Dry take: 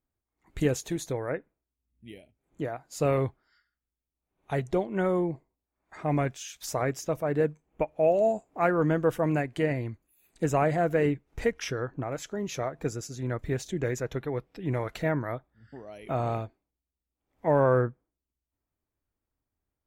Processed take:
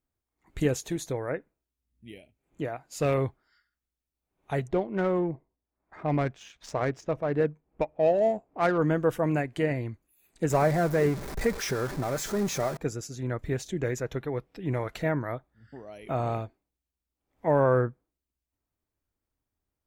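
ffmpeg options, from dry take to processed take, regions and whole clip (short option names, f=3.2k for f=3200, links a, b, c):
-filter_complex "[0:a]asettb=1/sr,asplit=3[a][b][c];[a]atrim=end=2.134[d];[b]atrim=start=2.13:end=3.14,asetpts=PTS-STARTPTS,afade=t=in:d=0.004:c=qsin,afade=t=out:st=1.006:d=0.004:c=qsin,equalizer=f=2.6k:t=o:w=0.48:g=5,volume=19.5dB,asoftclip=hard,volume=-19.5dB[e];[c]atrim=start=3.136[f];[d][e]acrossfade=d=0.004:c1=hsin:c2=qsin[g];[g][f]acrossfade=d=0.004:c1=qsin:c2=hsin,asettb=1/sr,asplit=3[h][i][j];[h]atrim=end=4.684[k];[i]atrim=start=4.68:end=8.78,asetpts=PTS-STARTPTS,afade=t=in:d=0.004:c=qsin,afade=t=out:st=4.096:d=0.004:c=qsin,highshelf=f=4k:g=6.5,adynamicsmooth=sensitivity=3:basefreq=1.8k,asoftclip=type=hard:threshold=-14dB[l];[j]atrim=start=8.776[m];[k][l]acrossfade=d=0.004:c1=hsin:c2=qsin[n];[n][m]acrossfade=d=0.004:c1=qsin:c2=hsin,asettb=1/sr,asplit=3[o][p][q];[o]atrim=end=10.504[r];[p]atrim=start=10.5:end=12.77,asetpts=PTS-STARTPTS,afade=t=in:d=0.004:c=qsin,afade=t=out:st=2.266:d=0.004:c=qsin,aeval=exprs='val(0)+0.5*0.0266*sgn(val(0))':c=same,equalizer=f=2.9k:t=o:w=0.47:g=-8.5,aecho=1:1:5.1:0.32,atrim=end_sample=100107[s];[q]atrim=start=12.766[t];[r][s]acrossfade=d=0.004:c1=hsin:c2=qsin[u];[u][t]acrossfade=d=0.004:c1=qsin:c2=hsin"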